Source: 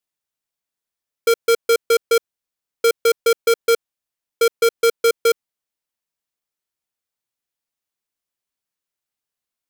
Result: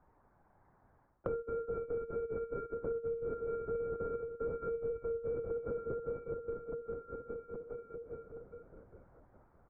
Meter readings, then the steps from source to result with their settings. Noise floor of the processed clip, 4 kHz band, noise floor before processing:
-69 dBFS, under -40 dB, under -85 dBFS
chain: backward echo that repeats 204 ms, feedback 67%, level -11 dB; spectral gate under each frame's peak -25 dB strong; comb 6.6 ms, depth 99%; hard clipper -14 dBFS, distortion -10 dB; harmonic-percussive split percussive -4 dB; high-pass 510 Hz 12 dB/octave; on a send: feedback delay 67 ms, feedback 22%, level -8 dB; on the sum: LPC vocoder at 8 kHz whisper; reverse; compression 12:1, threshold -34 dBFS, peak gain reduction 19.5 dB; reverse; Gaussian low-pass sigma 8.2 samples; three bands compressed up and down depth 100%; trim +2 dB

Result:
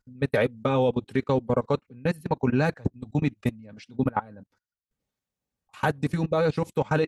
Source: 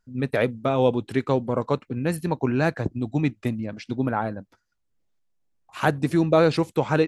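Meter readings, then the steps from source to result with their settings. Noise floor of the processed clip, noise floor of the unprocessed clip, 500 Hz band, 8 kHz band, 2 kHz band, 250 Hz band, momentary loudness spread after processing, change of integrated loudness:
under -85 dBFS, -73 dBFS, -2.5 dB, no reading, -2.5 dB, -3.0 dB, 7 LU, -2.5 dB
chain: level held to a coarse grid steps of 24 dB; comb of notches 340 Hz; trim +3.5 dB

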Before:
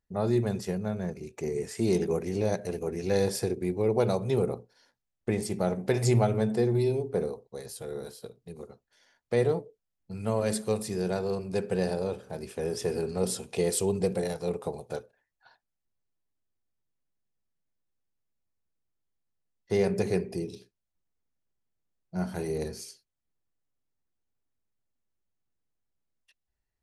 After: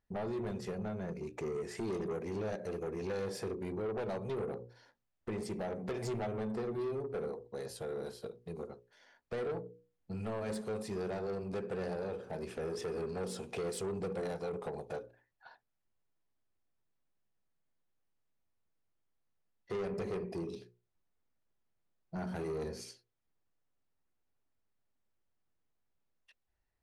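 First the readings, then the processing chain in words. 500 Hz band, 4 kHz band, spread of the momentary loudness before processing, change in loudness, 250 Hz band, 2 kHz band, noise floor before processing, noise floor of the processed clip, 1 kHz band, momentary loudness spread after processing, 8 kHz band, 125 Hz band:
-9.0 dB, -10.0 dB, 14 LU, -9.5 dB, -9.5 dB, -7.0 dB, -84 dBFS, -83 dBFS, -7.0 dB, 8 LU, -14.0 dB, -12.5 dB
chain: low-pass 1.8 kHz 6 dB/octave; bass shelf 360 Hz -5 dB; hum notches 60/120/180/240/300/360/420/480/540 Hz; compression 2:1, threshold -41 dBFS, peak gain reduction 10.5 dB; saturation -38 dBFS, distortion -10 dB; trim +5.5 dB

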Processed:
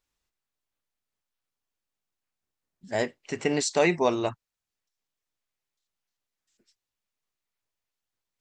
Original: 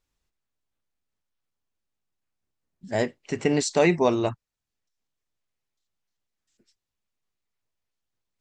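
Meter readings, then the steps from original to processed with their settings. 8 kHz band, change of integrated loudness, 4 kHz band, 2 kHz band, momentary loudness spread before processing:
0.0 dB, -2.5 dB, 0.0 dB, 0.0 dB, 10 LU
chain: bass shelf 360 Hz -7 dB

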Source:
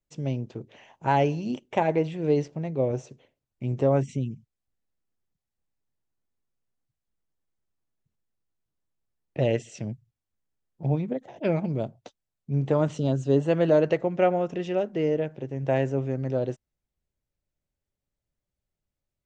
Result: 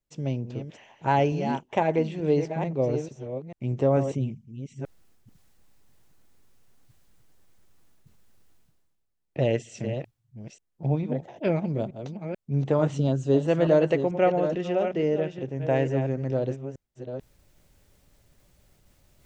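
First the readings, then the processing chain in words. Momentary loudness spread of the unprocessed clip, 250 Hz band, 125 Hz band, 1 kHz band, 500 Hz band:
12 LU, +0.5 dB, +0.5 dB, +0.5 dB, +0.5 dB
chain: chunks repeated in reverse 441 ms, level -8.5 dB; reverse; upward compressor, threshold -39 dBFS; reverse

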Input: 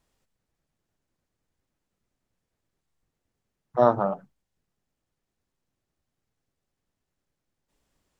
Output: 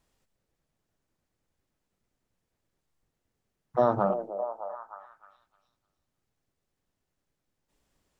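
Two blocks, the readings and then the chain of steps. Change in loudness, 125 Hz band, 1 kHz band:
-5.0 dB, -2.0 dB, -2.5 dB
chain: peak limiter -11 dBFS, peak gain reduction 7 dB; repeats whose band climbs or falls 306 ms, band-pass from 460 Hz, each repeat 0.7 oct, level -6.5 dB

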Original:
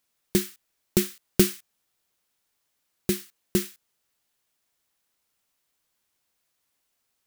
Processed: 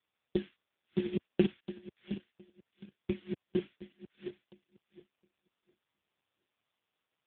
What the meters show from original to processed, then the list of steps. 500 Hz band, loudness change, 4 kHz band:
-5.5 dB, -10.0 dB, -15.0 dB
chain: backward echo that repeats 357 ms, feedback 44%, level -5 dB; trim -5 dB; AMR-NB 4.75 kbps 8 kHz

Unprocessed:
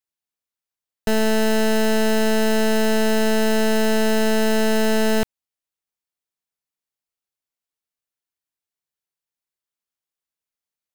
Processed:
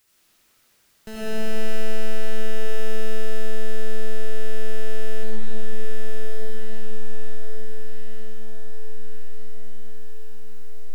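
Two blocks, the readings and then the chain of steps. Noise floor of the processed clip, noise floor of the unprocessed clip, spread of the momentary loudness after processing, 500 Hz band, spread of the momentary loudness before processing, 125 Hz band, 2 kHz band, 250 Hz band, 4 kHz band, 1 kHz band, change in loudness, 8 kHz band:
-62 dBFS, under -85 dBFS, 18 LU, -10.5 dB, 2 LU, no reading, -11.0 dB, -16.5 dB, -12.0 dB, -16.5 dB, -15.0 dB, -13.5 dB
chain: jump at every zero crossing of -42 dBFS; peaking EQ 730 Hz -4.5 dB 1 oct; on a send: echo that smears into a reverb 1221 ms, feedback 58%, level -7.5 dB; on the sum: algorithmic reverb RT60 2.5 s, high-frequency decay 0.5×, pre-delay 45 ms, DRR -7 dB; loudness maximiser -10 dB; trim -6 dB

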